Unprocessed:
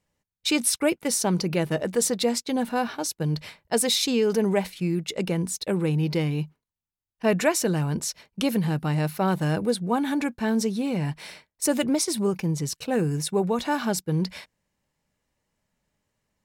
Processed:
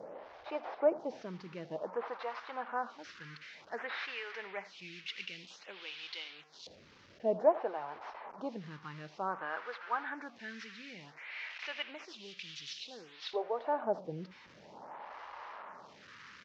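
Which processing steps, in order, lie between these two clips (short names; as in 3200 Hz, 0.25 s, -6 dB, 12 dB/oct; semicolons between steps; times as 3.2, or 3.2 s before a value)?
delta modulation 32 kbps, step -30.5 dBFS; LFO band-pass saw up 0.15 Hz 550–4000 Hz; echo 81 ms -18.5 dB; photocell phaser 0.54 Hz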